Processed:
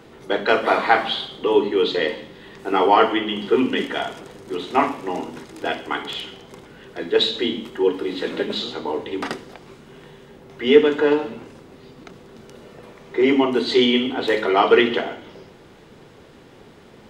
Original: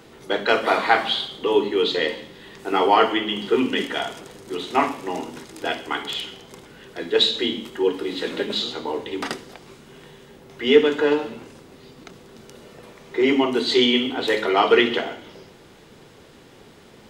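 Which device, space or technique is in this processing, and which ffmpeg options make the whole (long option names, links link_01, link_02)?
behind a face mask: -af "highshelf=frequency=3400:gain=-7.5,volume=2dB"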